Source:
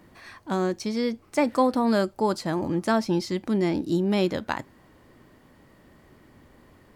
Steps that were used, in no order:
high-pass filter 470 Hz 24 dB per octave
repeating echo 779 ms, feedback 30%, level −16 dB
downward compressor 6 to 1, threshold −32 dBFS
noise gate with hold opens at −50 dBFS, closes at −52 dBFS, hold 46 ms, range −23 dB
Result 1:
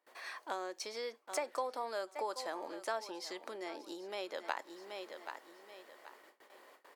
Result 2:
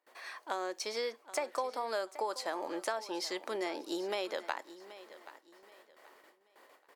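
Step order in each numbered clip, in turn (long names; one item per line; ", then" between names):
repeating echo, then downward compressor, then high-pass filter, then noise gate with hold
high-pass filter, then noise gate with hold, then downward compressor, then repeating echo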